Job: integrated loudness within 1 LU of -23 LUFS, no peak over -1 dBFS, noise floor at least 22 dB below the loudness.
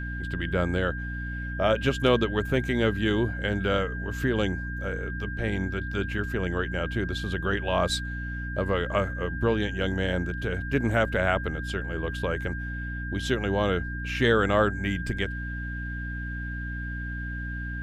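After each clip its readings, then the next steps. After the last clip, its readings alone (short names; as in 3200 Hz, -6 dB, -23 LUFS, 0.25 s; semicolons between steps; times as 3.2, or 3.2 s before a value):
hum 60 Hz; harmonics up to 300 Hz; hum level -31 dBFS; steady tone 1600 Hz; tone level -36 dBFS; loudness -28.0 LUFS; peak -9.0 dBFS; loudness target -23.0 LUFS
-> de-hum 60 Hz, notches 5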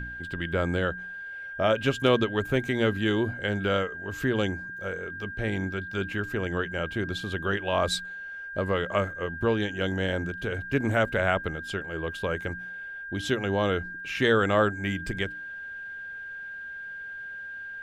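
hum none; steady tone 1600 Hz; tone level -36 dBFS
-> notch 1600 Hz, Q 30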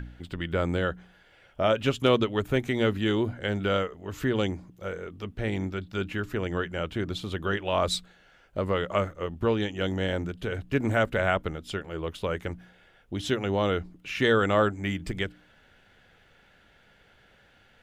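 steady tone none; loudness -28.5 LUFS; peak -9.0 dBFS; loudness target -23.0 LUFS
-> gain +5.5 dB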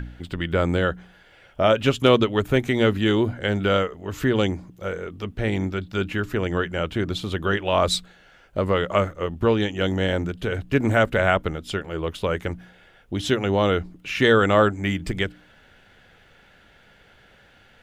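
loudness -23.0 LUFS; peak -3.5 dBFS; noise floor -54 dBFS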